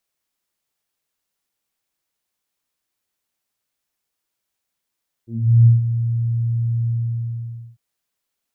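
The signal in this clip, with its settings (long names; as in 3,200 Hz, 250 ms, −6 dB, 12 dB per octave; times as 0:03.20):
subtractive voice saw A#2 24 dB per octave, low-pass 130 Hz, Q 2.4, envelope 1.5 octaves, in 0.20 s, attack 391 ms, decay 0.15 s, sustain −11 dB, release 0.89 s, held 1.61 s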